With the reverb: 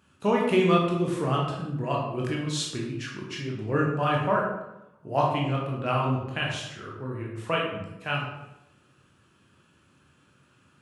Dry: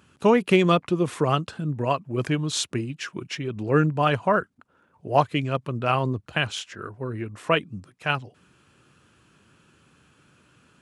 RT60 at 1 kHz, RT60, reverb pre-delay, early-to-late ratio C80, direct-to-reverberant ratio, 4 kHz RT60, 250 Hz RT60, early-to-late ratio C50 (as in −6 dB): 0.85 s, 0.90 s, 15 ms, 5.0 dB, −2.5 dB, 0.65 s, 0.95 s, 2.5 dB